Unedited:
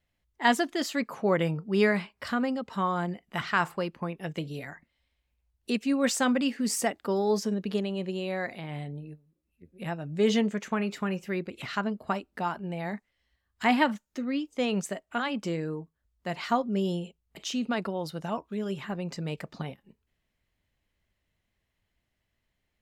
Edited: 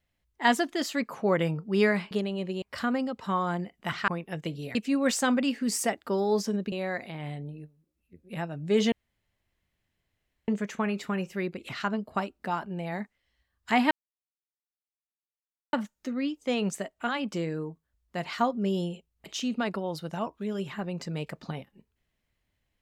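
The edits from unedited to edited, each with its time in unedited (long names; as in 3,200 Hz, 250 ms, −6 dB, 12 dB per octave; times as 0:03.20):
0:03.57–0:04.00: remove
0:04.67–0:05.73: remove
0:07.70–0:08.21: move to 0:02.11
0:10.41: splice in room tone 1.56 s
0:13.84: splice in silence 1.82 s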